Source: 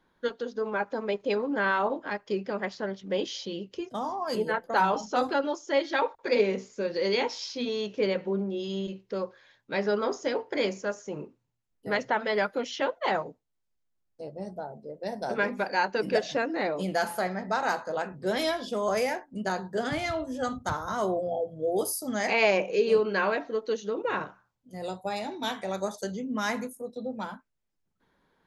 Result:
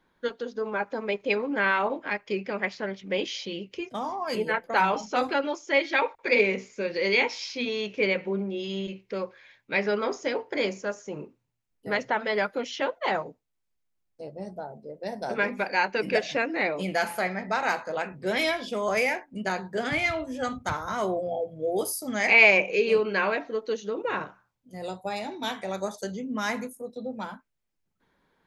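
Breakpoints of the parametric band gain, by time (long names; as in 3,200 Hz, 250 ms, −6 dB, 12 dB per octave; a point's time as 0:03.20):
parametric band 2,300 Hz 0.54 octaves
0:00.77 +3.5 dB
0:01.35 +12.5 dB
0:09.93 +12.5 dB
0:10.48 +3.5 dB
0:15.12 +3.5 dB
0:15.94 +12 dB
0:22.87 +12 dB
0:23.60 +3 dB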